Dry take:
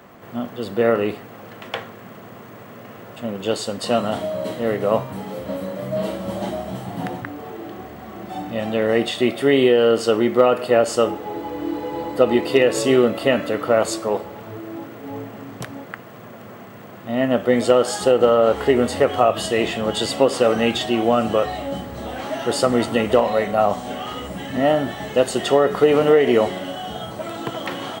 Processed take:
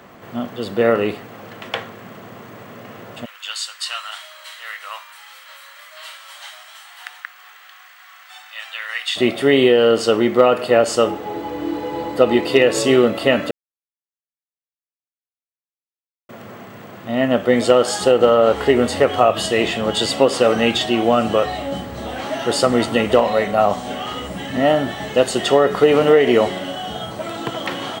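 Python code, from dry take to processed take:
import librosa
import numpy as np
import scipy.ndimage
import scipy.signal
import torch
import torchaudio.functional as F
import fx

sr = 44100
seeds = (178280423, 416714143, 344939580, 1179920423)

y = fx.highpass(x, sr, hz=1300.0, slope=24, at=(3.24, 9.15), fade=0.02)
y = fx.edit(y, sr, fx.silence(start_s=13.51, length_s=2.78), tone=tone)
y = fx.lowpass(y, sr, hz=3700.0, slope=6)
y = fx.high_shelf(y, sr, hz=2700.0, db=9.0)
y = y * librosa.db_to_amplitude(1.5)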